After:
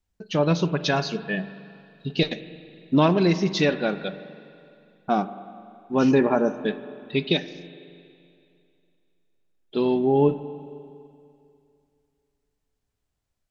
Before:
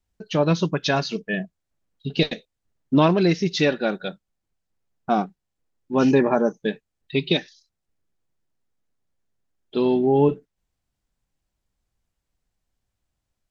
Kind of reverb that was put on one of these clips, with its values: spring tank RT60 2.5 s, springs 41/46 ms, chirp 45 ms, DRR 12.5 dB; gain -1.5 dB

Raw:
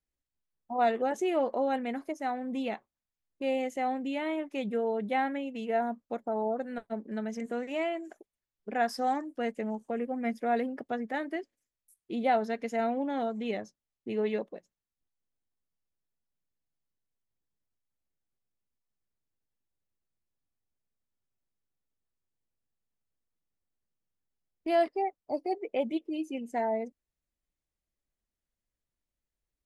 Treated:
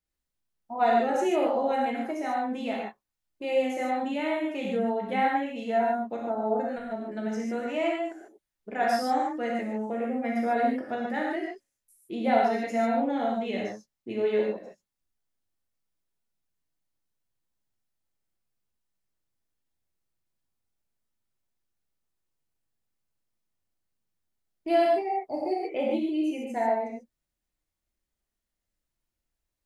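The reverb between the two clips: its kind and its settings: non-linear reverb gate 0.17 s flat, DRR -3.5 dB; gain -1 dB

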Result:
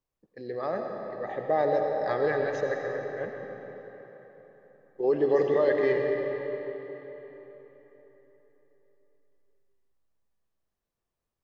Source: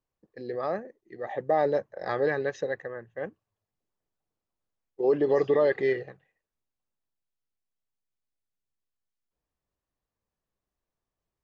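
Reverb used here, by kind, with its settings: digital reverb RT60 4.1 s, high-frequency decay 0.75×, pre-delay 45 ms, DRR 2 dB; gain -1.5 dB

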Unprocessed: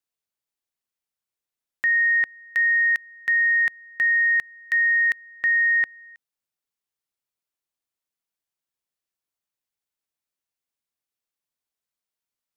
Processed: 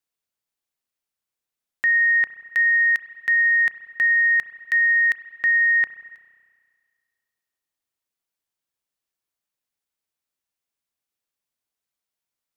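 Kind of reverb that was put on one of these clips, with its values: spring tank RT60 1.9 s, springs 31 ms, chirp 75 ms, DRR 12.5 dB; gain +1.5 dB

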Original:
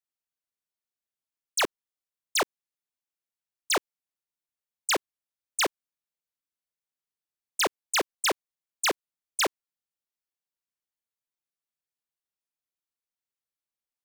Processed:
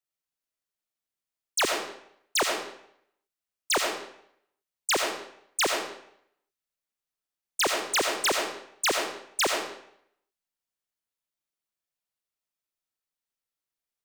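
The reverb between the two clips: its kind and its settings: digital reverb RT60 0.71 s, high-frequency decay 0.9×, pre-delay 40 ms, DRR 2 dB

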